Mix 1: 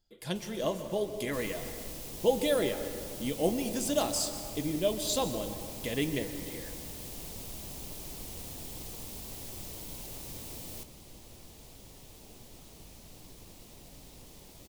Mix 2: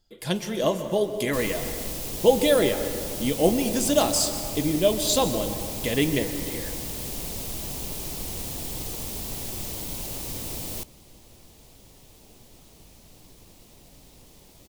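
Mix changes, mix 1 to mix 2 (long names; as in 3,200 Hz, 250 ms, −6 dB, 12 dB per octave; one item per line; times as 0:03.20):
speech +8.0 dB
second sound +10.0 dB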